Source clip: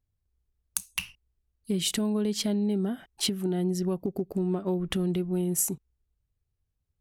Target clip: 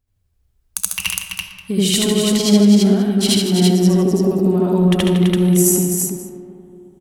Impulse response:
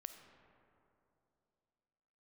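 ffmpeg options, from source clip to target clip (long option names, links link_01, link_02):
-filter_complex "[0:a]aecho=1:1:68|157|333|529:0.531|0.299|0.668|0.1,asplit=2[link_01][link_02];[1:a]atrim=start_sample=2205,adelay=78[link_03];[link_02][link_03]afir=irnorm=-1:irlink=0,volume=9dB[link_04];[link_01][link_04]amix=inputs=2:normalize=0,volume=5.5dB"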